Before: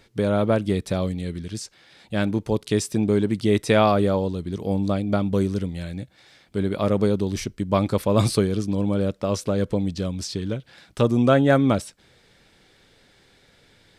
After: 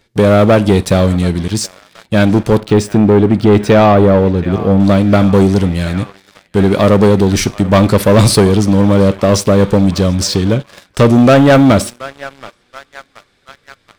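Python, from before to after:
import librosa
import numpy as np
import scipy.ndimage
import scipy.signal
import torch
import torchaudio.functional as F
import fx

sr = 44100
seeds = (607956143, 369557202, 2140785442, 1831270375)

y = fx.echo_banded(x, sr, ms=727, feedback_pct=83, hz=1800.0, wet_db=-18.0)
y = fx.rev_schroeder(y, sr, rt60_s=0.4, comb_ms=30, drr_db=18.5)
y = fx.leveller(y, sr, passes=3)
y = fx.peak_eq(y, sr, hz=10000.0, db=-13.5, octaves=2.6, at=(2.6, 4.8))
y = y * librosa.db_to_amplitude(4.5)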